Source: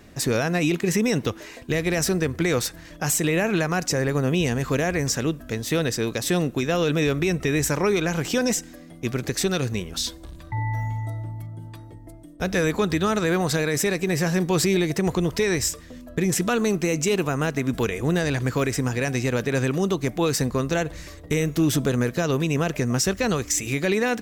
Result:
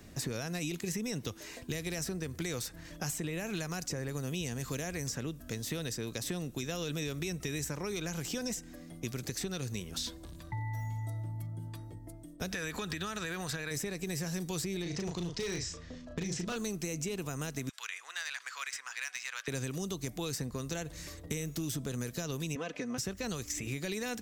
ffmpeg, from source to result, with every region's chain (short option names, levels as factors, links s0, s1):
-filter_complex "[0:a]asettb=1/sr,asplit=3[s0][s1][s2];[s0]atrim=end=12.514[s3];[s1]atrim=start=12.51:end=13.71,asetpts=PTS-STARTPTS,afade=t=in:d=0.004:c=qsin,afade=t=out:st=1.196:d=0.004:c=qsin,equalizer=f=1900:t=o:w=1.7:g=11.5,acompressor=threshold=0.0794:ratio=3:attack=3.2:release=140:knee=1:detection=peak,bandreject=f=2100:w=10[s4];[s2]atrim=start=13.706[s5];[s3][s4]acrossfade=d=0.004:c1=hsin:c2=qsin[s6];[s6][s5]acrossfade=d=0.004:c1=qsin:c2=hsin,asettb=1/sr,asplit=3[s7][s8][s9];[s7]atrim=end=14.824[s10];[s8]atrim=start=14.82:end=16.56,asetpts=PTS-STARTPTS,afade=t=in:d=0.004:c=qsin,afade=t=out:st=1.736:d=0.004:c=qsin,lowpass=f=6000:w=0.5412,lowpass=f=6000:w=1.3066,asplit=2[s11][s12];[s12]adelay=35,volume=0.596[s13];[s11][s13]amix=inputs=2:normalize=0,atrim=end_sample=76734,volume=6.31,asoftclip=hard,volume=0.158[s14];[s9]atrim=start=16.556[s15];[s10][s14]acrossfade=d=0.004:c1=hsin:c2=qsin[s16];[s16][s15]acrossfade=d=0.004:c1=qsin:c2=hsin,asettb=1/sr,asplit=3[s17][s18][s19];[s17]atrim=end=17.694[s20];[s18]atrim=start=17.69:end=19.48,asetpts=PTS-STARTPTS,afade=t=in:d=0.004:c=qsin,afade=t=out:st=1.786:d=0.004:c=qsin,highpass=f=1200:w=0.5412,highpass=f=1200:w=1.3066,adynamicsmooth=sensitivity=3.5:basefreq=5800[s21];[s19]atrim=start=19.476[s22];[s20][s21]acrossfade=d=0.004:c1=hsin:c2=qsin[s23];[s23][s22]acrossfade=d=0.004:c1=qsin:c2=hsin,asettb=1/sr,asplit=3[s24][s25][s26];[s24]atrim=end=22.554[s27];[s25]atrim=start=22.55:end=22.98,asetpts=PTS-STARTPTS,afade=t=in:d=0.004:c=qsin,afade=t=out:st=0.426:d=0.004:c=qsin,highpass=270,lowpass=3100,aecho=1:1:4:0.7,atrim=end_sample=18963[s28];[s26]atrim=start=22.976[s29];[s27][s28]acrossfade=d=0.004:c1=hsin:c2=qsin[s30];[s30][s29]acrossfade=d=0.004:c1=qsin:c2=hsin,bass=f=250:g=4,treble=f=4000:g=6,acrossover=split=87|3200[s31][s32][s33];[s31]acompressor=threshold=0.00501:ratio=4[s34];[s32]acompressor=threshold=0.0316:ratio=4[s35];[s33]acompressor=threshold=0.02:ratio=4[s36];[s34][s35][s36]amix=inputs=3:normalize=0,volume=0.473"